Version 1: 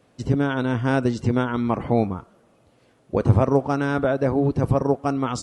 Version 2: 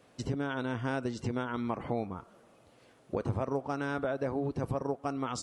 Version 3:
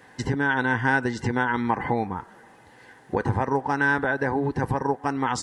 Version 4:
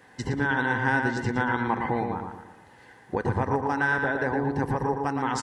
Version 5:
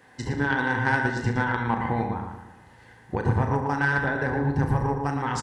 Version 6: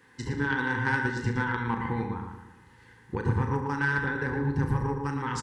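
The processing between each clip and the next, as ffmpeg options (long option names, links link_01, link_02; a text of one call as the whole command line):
ffmpeg -i in.wav -af "lowshelf=frequency=320:gain=-6,acompressor=threshold=-34dB:ratio=2.5" out.wav
ffmpeg -i in.wav -af "superequalizer=8b=0.562:9b=2.51:11b=3.98,volume=7.5dB" out.wav
ffmpeg -i in.wav -filter_complex "[0:a]asplit=2[link_01][link_02];[link_02]adelay=115,lowpass=frequency=4100:poles=1,volume=-4.5dB,asplit=2[link_03][link_04];[link_04]adelay=115,lowpass=frequency=4100:poles=1,volume=0.44,asplit=2[link_05][link_06];[link_06]adelay=115,lowpass=frequency=4100:poles=1,volume=0.44,asplit=2[link_07][link_08];[link_08]adelay=115,lowpass=frequency=4100:poles=1,volume=0.44,asplit=2[link_09][link_10];[link_10]adelay=115,lowpass=frequency=4100:poles=1,volume=0.44[link_11];[link_01][link_03][link_05][link_07][link_09][link_11]amix=inputs=6:normalize=0,volume=-3dB" out.wav
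ffmpeg -i in.wav -af "aecho=1:1:35|69:0.422|0.282,aeval=exprs='0.316*(cos(1*acos(clip(val(0)/0.316,-1,1)))-cos(1*PI/2))+0.0316*(cos(3*acos(clip(val(0)/0.316,-1,1)))-cos(3*PI/2))':channel_layout=same,asubboost=boost=2.5:cutoff=210,volume=2dB" out.wav
ffmpeg -i in.wav -af "asuperstop=centerf=660:order=4:qfactor=1.9,volume=-3dB" out.wav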